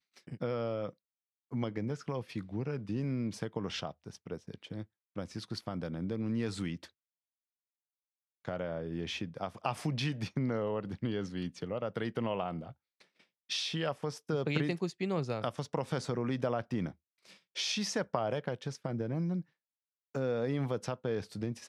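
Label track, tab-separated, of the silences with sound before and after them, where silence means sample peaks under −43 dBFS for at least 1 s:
6.850000	8.450000	silence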